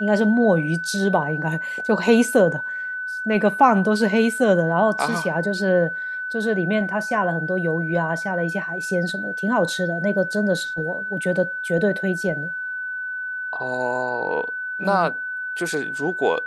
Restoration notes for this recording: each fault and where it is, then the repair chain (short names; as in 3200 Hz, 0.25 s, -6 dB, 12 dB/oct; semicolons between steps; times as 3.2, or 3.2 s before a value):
tone 1500 Hz -26 dBFS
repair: notch 1500 Hz, Q 30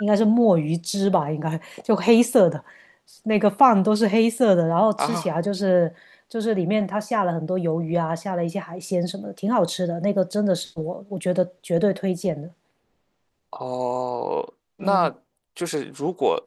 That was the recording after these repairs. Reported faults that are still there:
none